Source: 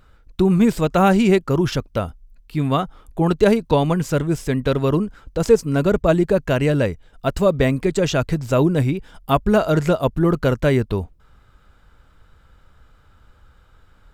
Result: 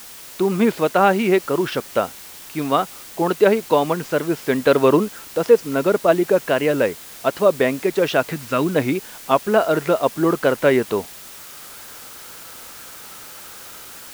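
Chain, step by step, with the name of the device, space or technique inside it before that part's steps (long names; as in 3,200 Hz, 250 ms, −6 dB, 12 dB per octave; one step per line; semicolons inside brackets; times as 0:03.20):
0:08.32–0:08.76: flat-topped bell 570 Hz −9 dB
dictaphone (band-pass filter 330–3,300 Hz; automatic gain control gain up to 16 dB; tape wow and flutter; white noise bed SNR 19 dB)
level −2 dB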